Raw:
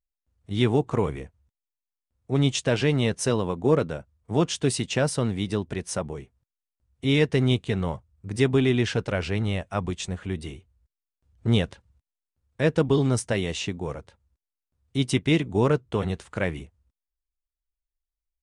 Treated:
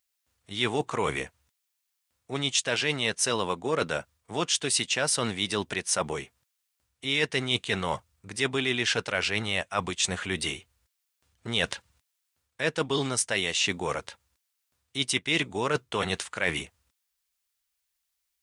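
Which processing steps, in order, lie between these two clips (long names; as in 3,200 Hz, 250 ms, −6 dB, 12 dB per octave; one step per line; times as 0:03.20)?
high-pass filter 140 Hz 6 dB per octave
tilt shelving filter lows −8.5 dB, about 780 Hz
reversed playback
downward compressor 4 to 1, threshold −33 dBFS, peak gain reduction 14.5 dB
reversed playback
level +8 dB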